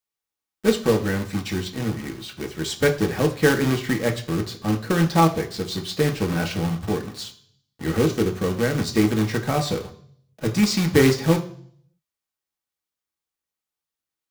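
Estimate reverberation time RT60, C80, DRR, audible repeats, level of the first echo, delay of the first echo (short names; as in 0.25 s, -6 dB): 0.55 s, 17.0 dB, 2.0 dB, none, none, none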